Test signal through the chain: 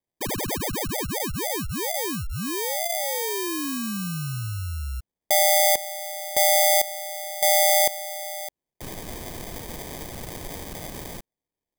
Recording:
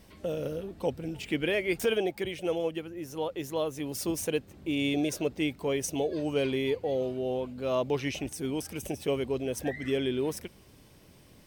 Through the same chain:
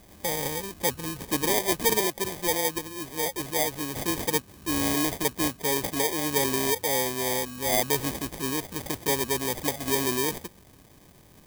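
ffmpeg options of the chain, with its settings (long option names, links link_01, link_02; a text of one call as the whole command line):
ffmpeg -i in.wav -af "acrusher=samples=32:mix=1:aa=0.000001,crystalizer=i=2.5:c=0,volume=1dB" out.wav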